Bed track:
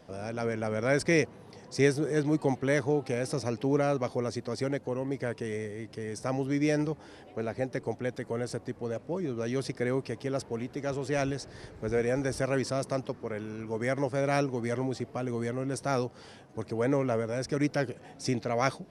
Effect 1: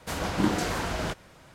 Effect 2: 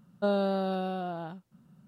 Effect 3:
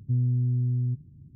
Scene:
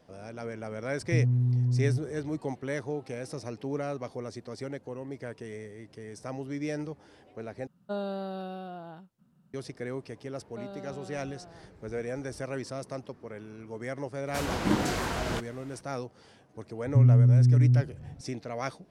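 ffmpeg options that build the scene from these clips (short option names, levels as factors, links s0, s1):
-filter_complex "[3:a]asplit=2[s0][s1];[2:a]asplit=2[s2][s3];[0:a]volume=0.473[s4];[s1]lowshelf=f=330:g=7[s5];[s4]asplit=2[s6][s7];[s6]atrim=end=7.674[s8];[s2]atrim=end=1.87,asetpts=PTS-STARTPTS,volume=0.473[s9];[s7]atrim=start=9.536[s10];[s0]atrim=end=1.35,asetpts=PTS-STARTPTS,volume=0.944,afade=t=in:d=0.004:c=hsin,afade=t=out:st=1.346:d=0.004:c=hsin,adelay=1030[s11];[s3]atrim=end=1.87,asetpts=PTS-STARTPTS,volume=0.168,afade=t=in:d=0.004:c=hsin,afade=t=out:st=1.866:d=0.004:c=hsin,adelay=455994S[s12];[1:a]atrim=end=1.54,asetpts=PTS-STARTPTS,volume=0.841,afade=t=in:d=0.004:c=hsin,afade=t=out:st=1.536:d=0.004:c=hsin,adelay=14270[s13];[s5]atrim=end=1.35,asetpts=PTS-STARTPTS,volume=0.944,afade=t=in:d=0.004:c=hsin,afade=t=out:st=1.346:d=0.004:c=hsin,adelay=16860[s14];[s8][s9]acrossfade=d=0.004:c1=hsin:c2=hsin[s15];[s15][s10]acrossfade=d=0.004:c1=hsin:c2=hsin[s16];[s16][s11][s12][s13][s14]amix=inputs=5:normalize=0"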